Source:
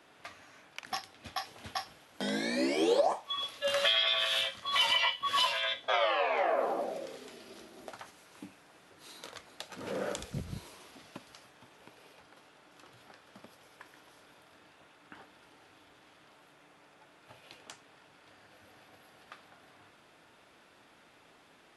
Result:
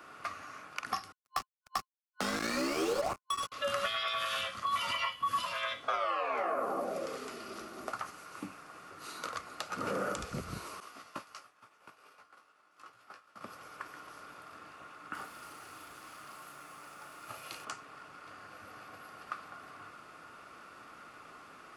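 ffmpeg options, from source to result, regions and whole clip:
-filter_complex "[0:a]asettb=1/sr,asplit=3[a][b][c];[a]atrim=end=1.124[d];[b]atrim=start=1.12:end=3.52,asetpts=PTS-STARTPTS,afade=t=in:d=0.004:c=qsin,afade=t=out:st=2.396:d=0.004:c=qsin,highshelf=f=2.7k:g=3.5,bandreject=f=214.8:t=h:w=4,bandreject=f=429.6:t=h:w=4,bandreject=f=644.4:t=h:w=4,bandreject=f=859.2:t=h:w=4,bandreject=f=1.074k:t=h:w=4,bandreject=f=1.2888k:t=h:w=4,bandreject=f=1.5036k:t=h:w=4,bandreject=f=1.7184k:t=h:w=4,bandreject=f=1.9332k:t=h:w=4,bandreject=f=2.148k:t=h:w=4,bandreject=f=2.3628k:t=h:w=4,bandreject=f=2.5776k:t=h:w=4,bandreject=f=2.7924k:t=h:w=4,bandreject=f=3.0072k:t=h:w=4,bandreject=f=3.222k:t=h:w=4,bandreject=f=3.4368k:t=h:w=4,bandreject=f=3.6516k:t=h:w=4,bandreject=f=3.8664k:t=h:w=4,bandreject=f=4.0812k:t=h:w=4,bandreject=f=4.296k:t=h:w=4,bandreject=f=4.5108k:t=h:w=4,bandreject=f=4.7256k:t=h:w=4,bandreject=f=4.9404k:t=h:w=4,bandreject=f=5.1552k:t=h:w=4,bandreject=f=5.37k:t=h:w=4,bandreject=f=5.5848k:t=h:w=4,bandreject=f=5.7996k:t=h:w=4,bandreject=f=6.0144k:t=h:w=4,bandreject=f=6.2292k:t=h:w=4,bandreject=f=6.444k:t=h:w=4,bandreject=f=6.6588k:t=h:w=4,bandreject=f=6.8736k:t=h:w=4,bandreject=f=7.0884k:t=h:w=4,bandreject=f=7.3032k:t=h:w=4,bandreject=f=7.518k:t=h:w=4,acrusher=bits=4:mix=0:aa=0.5[e];[c]atrim=start=3.516[f];[d][e]acrossfade=d=0.004:c1=hsin:c2=qsin[g];[g][f]acrossfade=d=0.004:c1=qsin:c2=hsin,asettb=1/sr,asplit=3[h][i][j];[h]atrim=end=10.804[k];[i]atrim=start=10.8:end=13.41,asetpts=PTS-STARTPTS,afade=t=in:d=0.004:c=qsin,afade=t=out:st=2.606:d=0.004:c=qsin,lowshelf=f=320:g=-10.5,asplit=2[l][m];[m]adelay=18,volume=-5.5dB[n];[l][n]amix=inputs=2:normalize=0,atrim=end_sample=115101,agate=range=-33dB:threshold=-51dB:ratio=3:release=100:detection=peak[o];[j]atrim=start=13.406[p];[k][o]acrossfade=d=0.004:c1=hsin:c2=qsin[q];[q][p]acrossfade=d=0.004:c1=qsin:c2=hsin,asettb=1/sr,asplit=3[r][s][t];[r]atrim=end=15.134[u];[s]atrim=start=15.13:end=17.65,asetpts=PTS-STARTPTS,afade=t=in:d=0.004:c=qsin,afade=t=out:st=2.516:d=0.004:c=qsin,aemphasis=mode=production:type=50fm,asplit=2[v][w];[w]adelay=35,volume=-7dB[x];[v][x]amix=inputs=2:normalize=0,atrim=end_sample=111132[y];[t]atrim=start=17.646[z];[u][y]acrossfade=d=0.004:c1=hsin:c2=qsin[aa];[aa][z]acrossfade=d=0.004:c1=qsin:c2=hsin,superequalizer=10b=3.16:13b=0.562,acrossover=split=270|7800[ab][ac][ad];[ab]acompressor=threshold=-47dB:ratio=4[ae];[ac]acompressor=threshold=-38dB:ratio=4[af];[ad]acompressor=threshold=-58dB:ratio=4[ag];[ae][af][ag]amix=inputs=3:normalize=0,volume=5dB"

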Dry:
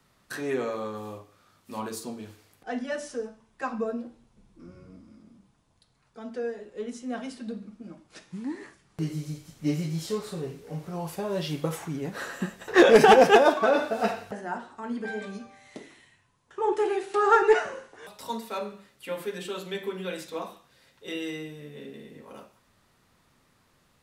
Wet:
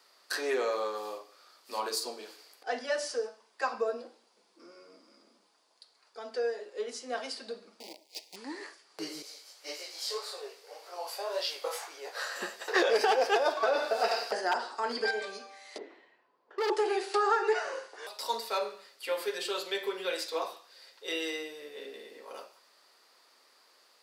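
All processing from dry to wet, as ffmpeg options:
-filter_complex "[0:a]asettb=1/sr,asplit=3[a][b][c];[a]atrim=end=7.804[d];[b]atrim=start=7.8:end=8.36,asetpts=PTS-STARTPTS,afade=t=in:d=0.004:c=qsin,afade=t=out:st=0.556:d=0.004:c=qsin,acrusher=bits=8:dc=4:mix=0:aa=0.000001,asuperstop=centerf=1400:order=8:qfactor=1.2[e];[c]atrim=start=8.356[f];[d][e]acrossfade=d=0.004:c1=hsin:c2=qsin[g];[g][f]acrossfade=d=0.004:c1=qsin:c2=hsin,asettb=1/sr,asplit=3[h][i][j];[h]atrim=end=9.224[k];[i]atrim=start=9.22:end=12.36,asetpts=PTS-STARTPTS,afade=t=in:d=0.004:c=qsin,afade=t=out:st=3.136:d=0.004:c=qsin,highpass=f=490:w=0.5412,highpass=f=490:w=1.3066,flanger=delay=16.5:depth=6.7:speed=1.8[l];[j]atrim=start=12.356[m];[k][l]acrossfade=d=0.004:c1=hsin:c2=qsin[n];[n][m]acrossfade=d=0.004:c1=qsin:c2=hsin,asettb=1/sr,asplit=3[o][p][q];[o]atrim=end=14.114[r];[p]atrim=start=14.11:end=15.11,asetpts=PTS-STARTPTS,afade=t=in:d=0.004:c=qsin,afade=t=out:st=0.996:d=0.004:c=qsin,equalizer=f=4.9k:w=6.4:g=9.5,acontrast=22,aeval=exprs='0.1*(abs(mod(val(0)/0.1+3,4)-2)-1)':c=same[s];[q]atrim=start=15.106[t];[r][s]acrossfade=d=0.004:c1=hsin:c2=qsin[u];[u][t]acrossfade=d=0.004:c1=qsin:c2=hsin,asettb=1/sr,asplit=3[v][w][x];[v]atrim=end=15.784[y];[w]atrim=start=15.78:end=16.7,asetpts=PTS-STARTPTS,afade=t=in:d=0.004:c=qsin,afade=t=out:st=0.916:d=0.004:c=qsin,lowpass=2.7k,tiltshelf=f=900:g=9,asoftclip=type=hard:threshold=-28dB[z];[x]atrim=start=16.696[aa];[y][z]acrossfade=d=0.004:c1=hsin:c2=qsin[ab];[ab][aa]acrossfade=d=0.004:c1=qsin:c2=hsin,highpass=f=400:w=0.5412,highpass=f=400:w=1.3066,equalizer=f=4.7k:t=o:w=0.34:g=12.5,acompressor=threshold=-26dB:ratio=5,volume=2dB"

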